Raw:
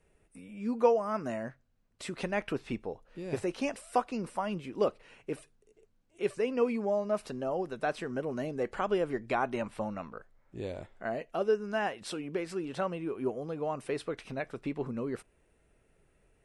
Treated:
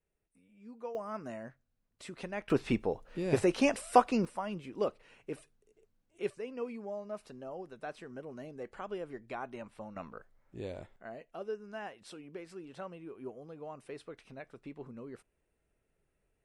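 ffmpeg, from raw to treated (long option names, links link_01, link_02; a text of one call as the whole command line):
ffmpeg -i in.wav -af "asetnsamples=nb_out_samples=441:pad=0,asendcmd='0.95 volume volume -7dB;2.5 volume volume 5.5dB;4.25 volume volume -4dB;6.3 volume volume -10.5dB;9.96 volume volume -3dB;10.96 volume volume -11dB',volume=-17.5dB" out.wav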